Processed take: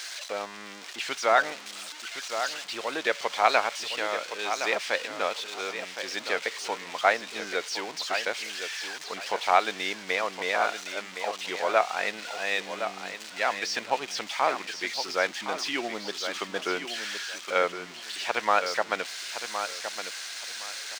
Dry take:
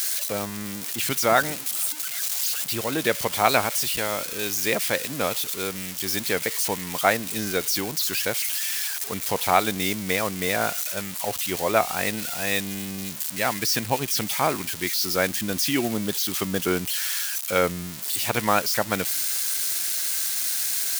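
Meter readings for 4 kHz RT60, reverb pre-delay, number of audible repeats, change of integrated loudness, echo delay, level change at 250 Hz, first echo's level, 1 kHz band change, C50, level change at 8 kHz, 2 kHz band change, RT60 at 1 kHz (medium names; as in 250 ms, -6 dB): no reverb, no reverb, 2, -5.0 dB, 1065 ms, -12.0 dB, -9.0 dB, -0.5 dB, no reverb, -12.5 dB, -1.0 dB, no reverb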